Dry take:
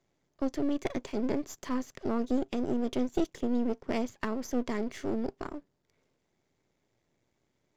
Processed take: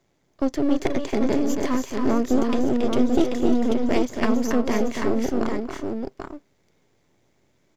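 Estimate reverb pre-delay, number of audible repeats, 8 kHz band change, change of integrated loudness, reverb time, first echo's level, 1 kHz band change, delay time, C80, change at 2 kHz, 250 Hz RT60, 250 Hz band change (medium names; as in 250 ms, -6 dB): no reverb, 3, no reading, +9.5 dB, no reverb, -18.5 dB, +10.5 dB, 223 ms, no reverb, +10.0 dB, no reverb, +10.0 dB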